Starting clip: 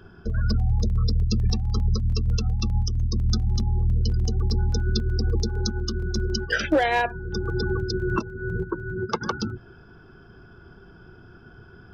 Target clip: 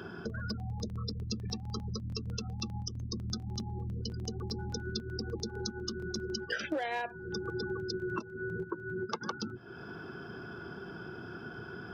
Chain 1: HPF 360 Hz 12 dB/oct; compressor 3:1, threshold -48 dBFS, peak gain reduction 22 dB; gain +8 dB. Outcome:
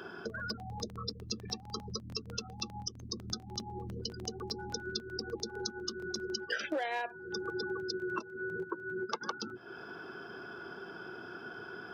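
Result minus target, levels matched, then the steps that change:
125 Hz band -7.5 dB
change: HPF 160 Hz 12 dB/oct

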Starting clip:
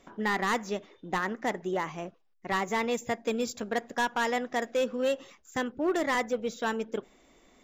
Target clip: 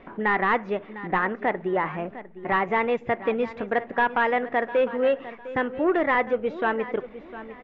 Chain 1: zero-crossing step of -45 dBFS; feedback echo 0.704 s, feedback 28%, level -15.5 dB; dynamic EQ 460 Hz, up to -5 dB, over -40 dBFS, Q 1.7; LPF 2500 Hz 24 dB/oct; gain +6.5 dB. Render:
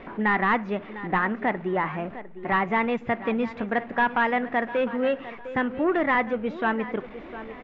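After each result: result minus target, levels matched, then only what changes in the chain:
zero-crossing step: distortion +10 dB; 250 Hz band +3.0 dB
change: zero-crossing step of -55 dBFS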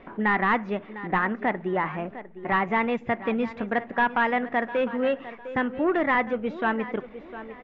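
250 Hz band +3.0 dB
change: dynamic EQ 220 Hz, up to -5 dB, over -40 dBFS, Q 1.7

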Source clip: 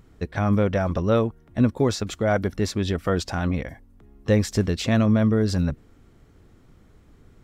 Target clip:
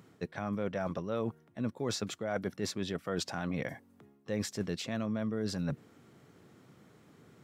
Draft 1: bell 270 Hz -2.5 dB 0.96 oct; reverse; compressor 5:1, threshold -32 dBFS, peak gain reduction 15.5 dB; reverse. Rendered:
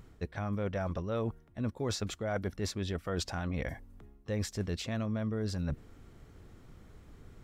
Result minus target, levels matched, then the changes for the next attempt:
125 Hz band +4.0 dB
add first: HPF 130 Hz 24 dB/oct

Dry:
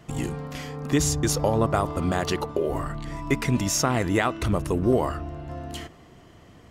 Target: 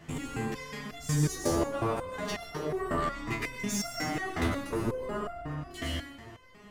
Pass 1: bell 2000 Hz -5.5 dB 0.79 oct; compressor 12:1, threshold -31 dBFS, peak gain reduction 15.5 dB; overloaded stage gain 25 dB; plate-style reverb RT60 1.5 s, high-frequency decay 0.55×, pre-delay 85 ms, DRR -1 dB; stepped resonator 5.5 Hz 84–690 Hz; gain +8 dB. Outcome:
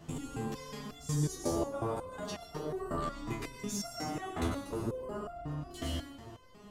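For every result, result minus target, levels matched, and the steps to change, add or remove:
2000 Hz band -6.5 dB; compressor: peak gain reduction +5 dB
change: bell 2000 Hz +5.5 dB 0.79 oct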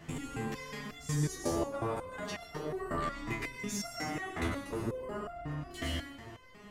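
compressor: peak gain reduction +6 dB
change: compressor 12:1, threshold -24.5 dBFS, peak gain reduction 10.5 dB

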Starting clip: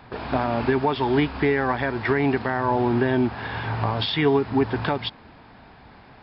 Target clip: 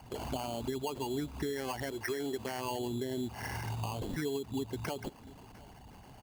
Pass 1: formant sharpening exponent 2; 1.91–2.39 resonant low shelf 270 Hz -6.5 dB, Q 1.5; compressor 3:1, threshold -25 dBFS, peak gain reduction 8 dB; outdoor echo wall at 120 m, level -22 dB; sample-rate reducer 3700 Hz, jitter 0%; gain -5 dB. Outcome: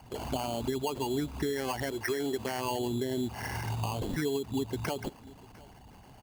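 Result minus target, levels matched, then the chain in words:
compressor: peak gain reduction -4 dB
formant sharpening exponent 2; 1.91–2.39 resonant low shelf 270 Hz -6.5 dB, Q 1.5; compressor 3:1, threshold -31 dBFS, peak gain reduction 12 dB; outdoor echo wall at 120 m, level -22 dB; sample-rate reducer 3700 Hz, jitter 0%; gain -5 dB

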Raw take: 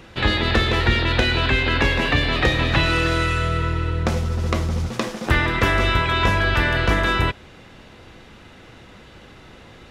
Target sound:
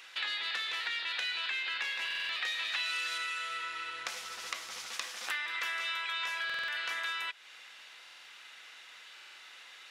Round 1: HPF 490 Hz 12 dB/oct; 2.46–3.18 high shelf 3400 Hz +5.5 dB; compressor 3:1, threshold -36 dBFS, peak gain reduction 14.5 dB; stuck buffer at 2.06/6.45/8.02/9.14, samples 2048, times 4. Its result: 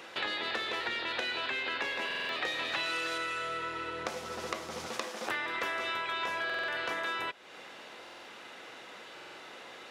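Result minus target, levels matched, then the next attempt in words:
500 Hz band +15.5 dB
HPF 1800 Hz 12 dB/oct; 2.46–3.18 high shelf 3400 Hz +5.5 dB; compressor 3:1, threshold -36 dBFS, peak gain reduction 13 dB; stuck buffer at 2.06/6.45/8.02/9.14, samples 2048, times 4

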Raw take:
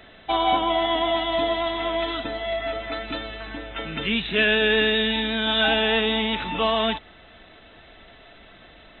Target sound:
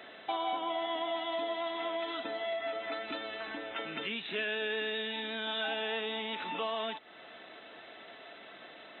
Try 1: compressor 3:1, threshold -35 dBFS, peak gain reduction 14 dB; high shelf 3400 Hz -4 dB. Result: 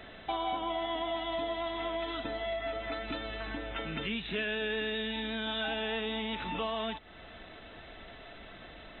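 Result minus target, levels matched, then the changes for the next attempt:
250 Hz band +4.5 dB
add after compressor: HPF 310 Hz 12 dB/oct

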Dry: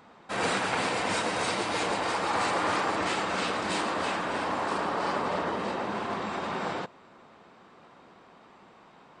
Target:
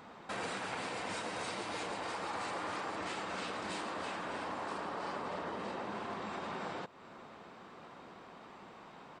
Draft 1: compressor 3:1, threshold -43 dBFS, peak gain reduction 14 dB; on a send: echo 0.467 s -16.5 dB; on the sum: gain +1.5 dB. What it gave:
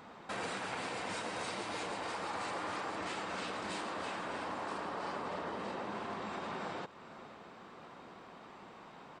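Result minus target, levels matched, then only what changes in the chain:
echo-to-direct +12 dB
change: echo 0.467 s -28.5 dB

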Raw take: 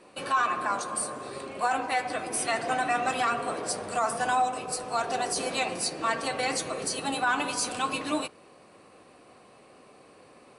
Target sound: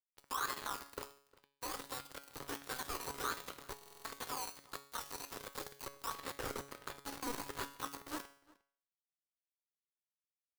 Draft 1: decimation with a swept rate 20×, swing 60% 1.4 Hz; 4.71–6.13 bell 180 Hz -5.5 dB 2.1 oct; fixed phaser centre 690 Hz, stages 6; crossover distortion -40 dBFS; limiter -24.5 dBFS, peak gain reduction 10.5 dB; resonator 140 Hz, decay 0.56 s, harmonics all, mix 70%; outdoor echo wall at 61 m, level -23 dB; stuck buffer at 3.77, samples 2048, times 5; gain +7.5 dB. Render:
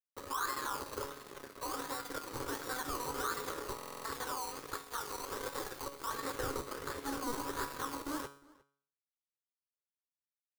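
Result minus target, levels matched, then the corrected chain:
crossover distortion: distortion -8 dB
decimation with a swept rate 20×, swing 60% 1.4 Hz; 4.71–6.13 bell 180 Hz -5.5 dB 2.1 oct; fixed phaser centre 690 Hz, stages 6; crossover distortion -31 dBFS; limiter -24.5 dBFS, peak gain reduction 10 dB; resonator 140 Hz, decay 0.56 s, harmonics all, mix 70%; outdoor echo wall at 61 m, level -23 dB; stuck buffer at 3.77, samples 2048, times 5; gain +7.5 dB

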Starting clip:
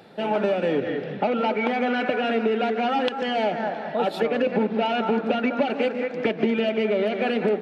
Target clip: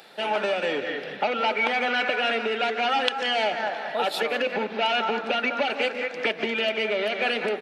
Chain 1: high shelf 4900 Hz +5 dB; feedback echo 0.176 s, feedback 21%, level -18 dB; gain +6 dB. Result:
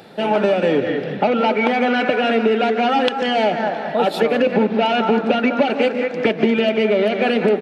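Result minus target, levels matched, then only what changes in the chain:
2000 Hz band -5.0 dB
add first: HPF 1500 Hz 6 dB/oct

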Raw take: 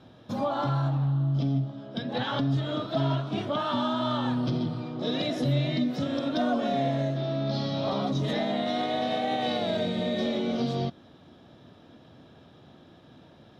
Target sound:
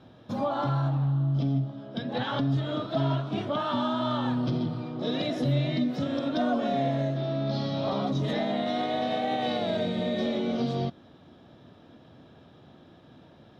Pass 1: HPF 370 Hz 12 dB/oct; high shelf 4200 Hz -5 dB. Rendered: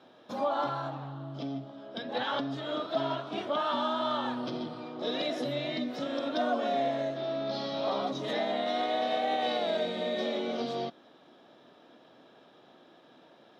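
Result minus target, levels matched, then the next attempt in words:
500 Hz band +3.0 dB
high shelf 4200 Hz -5 dB

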